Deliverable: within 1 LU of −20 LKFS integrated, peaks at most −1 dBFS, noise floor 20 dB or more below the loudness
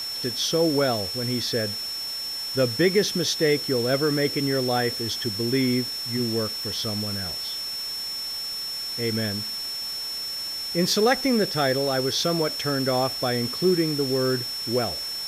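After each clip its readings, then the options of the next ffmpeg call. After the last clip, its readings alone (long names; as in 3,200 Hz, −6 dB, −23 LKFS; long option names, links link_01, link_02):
interfering tone 5,400 Hz; level of the tone −29 dBFS; background noise floor −32 dBFS; target noise floor −44 dBFS; integrated loudness −24.0 LKFS; sample peak −7.0 dBFS; target loudness −20.0 LKFS
→ -af "bandreject=frequency=5400:width=30"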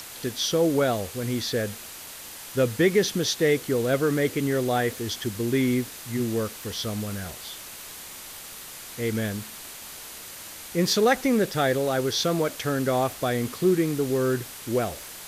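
interfering tone none found; background noise floor −41 dBFS; target noise floor −46 dBFS
→ -af "afftdn=noise_reduction=6:noise_floor=-41"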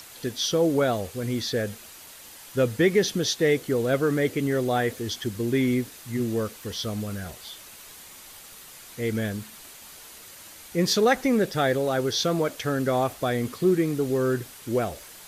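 background noise floor −46 dBFS; integrated loudness −25.5 LKFS; sample peak −7.5 dBFS; target loudness −20.0 LKFS
→ -af "volume=5.5dB"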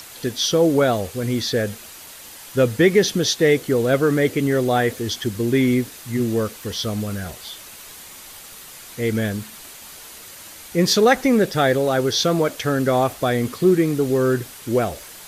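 integrated loudness −20.0 LKFS; sample peak −2.0 dBFS; background noise floor −40 dBFS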